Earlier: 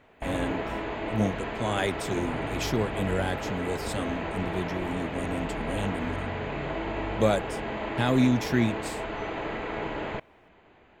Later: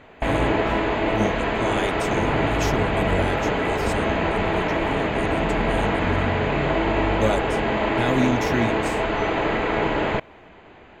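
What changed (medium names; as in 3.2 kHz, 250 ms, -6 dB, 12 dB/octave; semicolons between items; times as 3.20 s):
speech: add peaking EQ 6.4 kHz +6 dB 0.23 oct; background +10.5 dB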